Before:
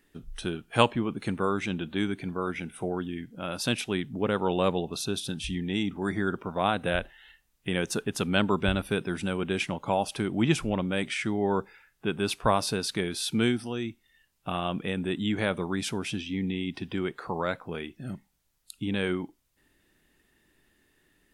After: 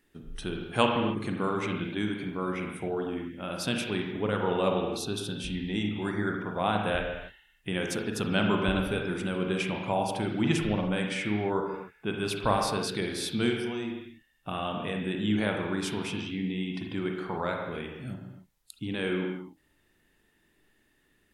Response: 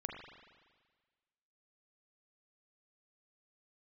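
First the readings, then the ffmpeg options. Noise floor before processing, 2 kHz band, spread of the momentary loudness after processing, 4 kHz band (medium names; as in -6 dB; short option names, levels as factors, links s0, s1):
-71 dBFS, -1.0 dB, 10 LU, -1.5 dB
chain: -filter_complex "[1:a]atrim=start_sample=2205,afade=t=out:st=0.35:d=0.01,atrim=end_sample=15876[s0];[0:a][s0]afir=irnorm=-1:irlink=0"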